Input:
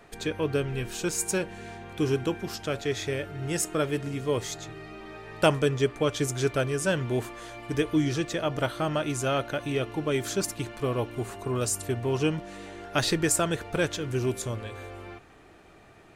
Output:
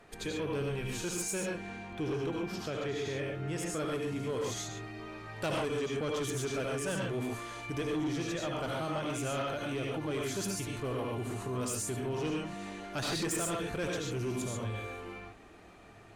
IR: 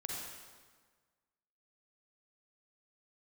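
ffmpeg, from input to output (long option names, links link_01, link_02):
-filter_complex "[0:a]asettb=1/sr,asplit=3[link_01][link_02][link_03];[link_01]atrim=end=1.534[link_04];[link_02]atrim=start=1.53:end=3.7,asetpts=PTS-STARTPTS,afade=type=in:duration=0.004:curve=qsin,afade=type=out:start_time=2.166:duration=0.004:curve=qsin,highshelf=frequency=5600:gain=-10[link_05];[link_03]atrim=start=3.696[link_06];[link_04][link_05]acrossfade=duration=0.004:curve1=hsin:curve2=qsin[link_07];[link_07][link_06]acrossfade=duration=0.004:curve1=qsin:curve2=hsin[link_08];[1:a]atrim=start_sample=2205,atrim=end_sample=3969,asetrate=26460,aresample=44100[link_09];[link_08][link_09]afir=irnorm=-1:irlink=0,aeval=exprs='0.335*(cos(1*acos(clip(val(0)/0.335,-1,1)))-cos(1*PI/2))+0.0133*(cos(7*acos(clip(val(0)/0.335,-1,1)))-cos(7*PI/2))':channel_layout=same,asoftclip=type=tanh:threshold=-25.5dB,alimiter=level_in=5dB:limit=-24dB:level=0:latency=1,volume=-5dB"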